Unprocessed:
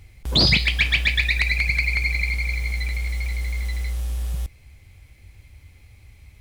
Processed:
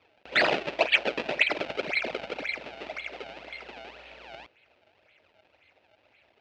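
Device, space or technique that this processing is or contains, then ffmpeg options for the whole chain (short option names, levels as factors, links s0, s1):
circuit-bent sampling toy: -af "acrusher=samples=34:mix=1:aa=0.000001:lfo=1:lforange=54.4:lforate=1.9,highpass=440,equalizer=f=610:t=q:w=4:g=6,equalizer=f=1100:t=q:w=4:g=-8,equalizer=f=2600:t=q:w=4:g=9,lowpass=f=4400:w=0.5412,lowpass=f=4400:w=1.3066,volume=0.596"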